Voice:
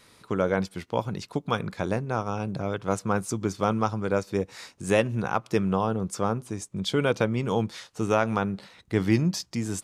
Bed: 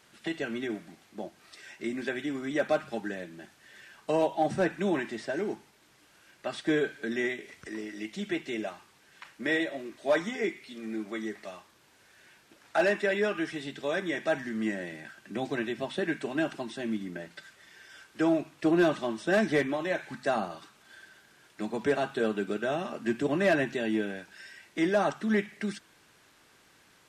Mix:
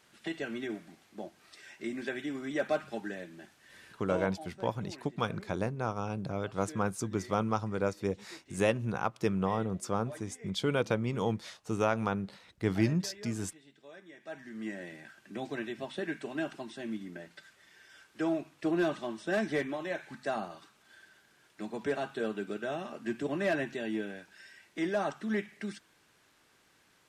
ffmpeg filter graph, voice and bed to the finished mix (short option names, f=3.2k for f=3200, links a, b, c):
-filter_complex "[0:a]adelay=3700,volume=-5.5dB[a];[1:a]volume=12dB,afade=t=out:st=3.76:d=0.67:silence=0.133352,afade=t=in:st=14.18:d=0.69:silence=0.16788[b];[a][b]amix=inputs=2:normalize=0"